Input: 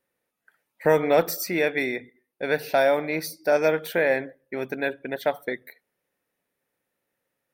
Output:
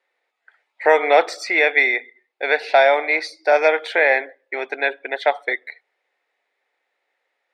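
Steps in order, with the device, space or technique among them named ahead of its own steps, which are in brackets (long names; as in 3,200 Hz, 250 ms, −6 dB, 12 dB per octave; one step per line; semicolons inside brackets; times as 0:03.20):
phone speaker on a table (loudspeaker in its box 420–6,500 Hz, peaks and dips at 530 Hz −4 dB, 780 Hz +6 dB, 2,100 Hz +8 dB, 3,700 Hz +3 dB, 5,900 Hz −7 dB)
level +6 dB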